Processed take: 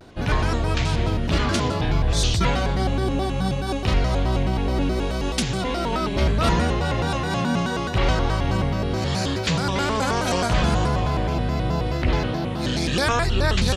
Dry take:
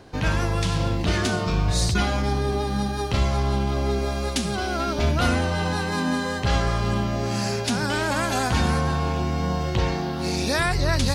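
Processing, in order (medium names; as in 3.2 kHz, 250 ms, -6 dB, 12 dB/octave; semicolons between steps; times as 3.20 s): tape speed -19%; vibrato with a chosen wave square 4.7 Hz, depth 250 cents; trim +1.5 dB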